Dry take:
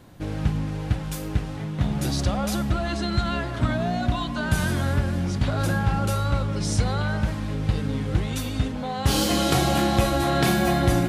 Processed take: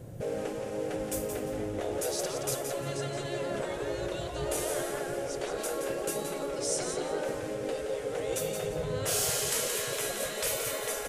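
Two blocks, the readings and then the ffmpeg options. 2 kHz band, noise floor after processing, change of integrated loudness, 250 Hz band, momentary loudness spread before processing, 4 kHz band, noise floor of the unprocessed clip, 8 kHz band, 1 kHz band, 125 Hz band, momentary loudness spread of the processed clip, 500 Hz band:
−8.5 dB, −37 dBFS, −8.0 dB, −14.0 dB, 7 LU, −7.0 dB, −31 dBFS, +1.5 dB, −11.5 dB, −19.0 dB, 6 LU, −1.5 dB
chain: -filter_complex "[0:a]afftfilt=real='re*lt(hypot(re,im),0.126)':imag='im*lt(hypot(re,im),0.126)':win_size=1024:overlap=0.75,equalizer=frequency=125:width_type=o:width=1:gain=10,equalizer=frequency=250:width_type=o:width=1:gain=-5,equalizer=frequency=500:width_type=o:width=1:gain=11,equalizer=frequency=1000:width_type=o:width=1:gain=-9,equalizer=frequency=2000:width_type=o:width=1:gain=-3,equalizer=frequency=4000:width_type=o:width=1:gain=-9,equalizer=frequency=8000:width_type=o:width=1:gain=4,asplit=2[link_01][link_02];[link_02]aecho=0:1:173|346|519:0.447|0.107|0.0257[link_03];[link_01][link_03]amix=inputs=2:normalize=0"

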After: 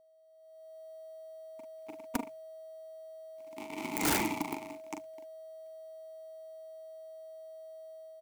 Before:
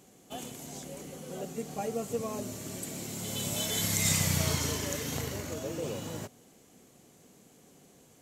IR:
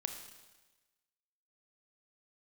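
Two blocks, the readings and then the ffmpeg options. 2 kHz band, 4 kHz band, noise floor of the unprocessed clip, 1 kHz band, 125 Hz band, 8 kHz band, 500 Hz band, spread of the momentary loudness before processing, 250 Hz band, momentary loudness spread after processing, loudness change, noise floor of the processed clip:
−2.5 dB, −10.0 dB, −60 dBFS, +1.0 dB, −17.0 dB, −11.5 dB, −4.5 dB, 16 LU, −3.0 dB, 17 LU, −7.0 dB, −58 dBFS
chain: -filter_complex "[0:a]flanger=delay=6.6:depth=8.3:regen=-11:speed=1.8:shape=triangular,equalizer=frequency=100:width_type=o:width=1.4:gain=-13.5,asplit=2[link_01][link_02];[link_02]aecho=0:1:72|144|216|288|360:0.473|0.199|0.0835|0.0351|0.0147[link_03];[link_01][link_03]amix=inputs=2:normalize=0,acrusher=bits=3:mix=0:aa=0.5,asplit=3[link_04][link_05][link_06];[link_04]bandpass=frequency=300:width_type=q:width=8,volume=0dB[link_07];[link_05]bandpass=frequency=870:width_type=q:width=8,volume=-6dB[link_08];[link_06]bandpass=frequency=2240:width_type=q:width=8,volume=-9dB[link_09];[link_07][link_08][link_09]amix=inputs=3:normalize=0,bandreject=frequency=50:width_type=h:width=6,bandreject=frequency=100:width_type=h:width=6,bandreject=frequency=150:width_type=h:width=6,asplit=2[link_10][link_11];[link_11]adelay=41,volume=-6dB[link_12];[link_10][link_12]amix=inputs=2:normalize=0,aeval=exprs='(mod(282*val(0)+1,2)-1)/282':channel_layout=same,aeval=exprs='val(0)+0.000178*sin(2*PI*640*n/s)':channel_layout=same,equalizer=frequency=3500:width_type=o:width=1.9:gain=-8,acrusher=bits=5:mode=log:mix=0:aa=0.000001,dynaudnorm=framelen=130:gausssize=9:maxgain=15.5dB,volume=15dB"

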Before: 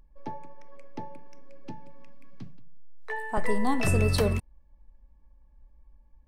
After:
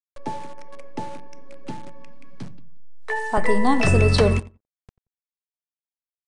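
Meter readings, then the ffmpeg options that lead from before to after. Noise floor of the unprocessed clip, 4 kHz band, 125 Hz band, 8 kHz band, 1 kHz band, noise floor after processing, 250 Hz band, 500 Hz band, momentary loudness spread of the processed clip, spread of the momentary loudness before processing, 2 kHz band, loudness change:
−58 dBFS, +7.5 dB, +7.0 dB, +3.0 dB, +8.0 dB, below −85 dBFS, +7.0 dB, +8.0 dB, 21 LU, 22 LU, +8.0 dB, +7.5 dB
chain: -filter_complex "[0:a]acrossover=split=7400[link_01][link_02];[link_02]acompressor=threshold=-51dB:ratio=4:attack=1:release=60[link_03];[link_01][link_03]amix=inputs=2:normalize=0,lowshelf=frequency=85:gain=-3.5,bandreject=frequency=105.8:width_type=h:width=4,bandreject=frequency=211.6:width_type=h:width=4,bandreject=frequency=317.4:width_type=h:width=4,aeval=exprs='val(0)*gte(abs(val(0)),0.00562)':channel_layout=same,asplit=2[link_04][link_05];[link_05]adelay=89,lowpass=frequency=1500:poles=1,volume=-19.5dB,asplit=2[link_06][link_07];[link_07]adelay=89,lowpass=frequency=1500:poles=1,volume=0.2[link_08];[link_06][link_08]amix=inputs=2:normalize=0[link_09];[link_04][link_09]amix=inputs=2:normalize=0,aresample=22050,aresample=44100,volume=8dB"

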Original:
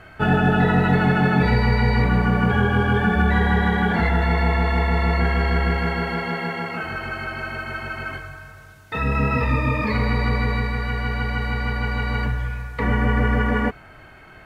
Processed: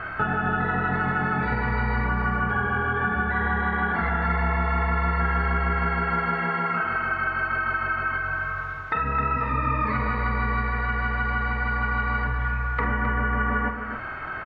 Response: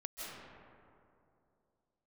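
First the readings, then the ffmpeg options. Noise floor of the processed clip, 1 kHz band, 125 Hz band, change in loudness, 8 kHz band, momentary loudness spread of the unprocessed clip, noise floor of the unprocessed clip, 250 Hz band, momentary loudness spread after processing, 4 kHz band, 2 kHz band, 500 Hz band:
−33 dBFS, +0.5 dB, −7.0 dB, −3.5 dB, can't be measured, 11 LU, −45 dBFS, −8.5 dB, 3 LU, −11.0 dB, 0.0 dB, −7.5 dB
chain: -filter_complex "[0:a]lowpass=2900,equalizer=frequency=1300:width_type=o:width=0.94:gain=12.5,acompressor=threshold=-31dB:ratio=4,asplit=2[link_01][link_02];[link_02]adelay=46,volume=-11dB[link_03];[link_01][link_03]amix=inputs=2:normalize=0,asplit=2[link_04][link_05];[link_05]adelay=262.4,volume=-7dB,highshelf=frequency=4000:gain=-5.9[link_06];[link_04][link_06]amix=inputs=2:normalize=0,volume=5dB"

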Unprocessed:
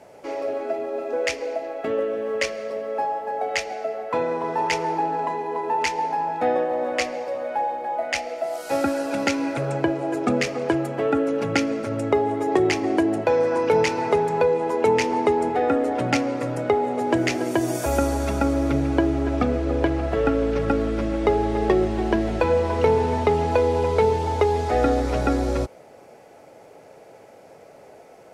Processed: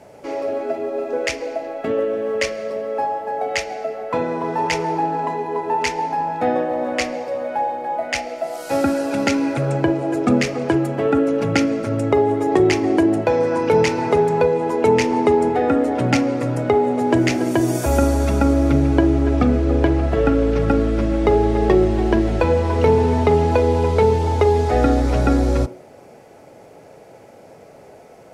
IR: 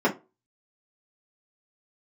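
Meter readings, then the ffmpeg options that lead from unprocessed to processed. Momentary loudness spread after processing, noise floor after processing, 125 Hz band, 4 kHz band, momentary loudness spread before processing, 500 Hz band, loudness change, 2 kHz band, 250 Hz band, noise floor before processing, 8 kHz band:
8 LU, −44 dBFS, +8.0 dB, +2.5 dB, 7 LU, +3.5 dB, +4.0 dB, +2.0 dB, +5.5 dB, −48 dBFS, +3.0 dB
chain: -filter_complex "[0:a]bass=frequency=250:gain=6,treble=frequency=4000:gain=1,asplit=2[link_01][link_02];[1:a]atrim=start_sample=2205,adelay=39[link_03];[link_02][link_03]afir=irnorm=-1:irlink=0,volume=-29dB[link_04];[link_01][link_04]amix=inputs=2:normalize=0,volume=2dB"

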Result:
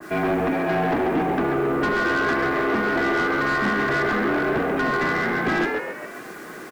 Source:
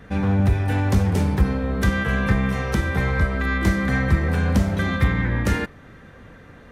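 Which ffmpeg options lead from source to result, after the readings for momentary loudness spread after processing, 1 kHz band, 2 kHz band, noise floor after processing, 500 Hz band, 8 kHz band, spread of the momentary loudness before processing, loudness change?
7 LU, +7.0 dB, +4.0 dB, −38 dBFS, +6.5 dB, −5.5 dB, 3 LU, −0.5 dB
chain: -filter_complex "[0:a]aecho=1:1:2.4:0.68,highpass=frequency=320:width_type=q:width=0.5412,highpass=frequency=320:width_type=q:width=1.307,lowpass=frequency=2800:width_type=q:width=0.5176,lowpass=frequency=2800:width_type=q:width=0.7071,lowpass=frequency=2800:width_type=q:width=1.932,afreqshift=-120,acrusher=bits=8:mix=0:aa=0.000001,asplit=2[link_01][link_02];[link_02]asplit=5[link_03][link_04][link_05][link_06][link_07];[link_03]adelay=136,afreqshift=86,volume=-6.5dB[link_08];[link_04]adelay=272,afreqshift=172,volume=-13.6dB[link_09];[link_05]adelay=408,afreqshift=258,volume=-20.8dB[link_10];[link_06]adelay=544,afreqshift=344,volume=-27.9dB[link_11];[link_07]adelay=680,afreqshift=430,volume=-35dB[link_12];[link_08][link_09][link_10][link_11][link_12]amix=inputs=5:normalize=0[link_13];[link_01][link_13]amix=inputs=2:normalize=0,asoftclip=type=tanh:threshold=-25dB,adynamicequalizer=threshold=0.00708:dfrequency=1600:dqfactor=0.7:tfrequency=1600:tqfactor=0.7:attack=5:release=100:ratio=0.375:range=2.5:mode=cutabove:tftype=highshelf,volume=8.5dB"

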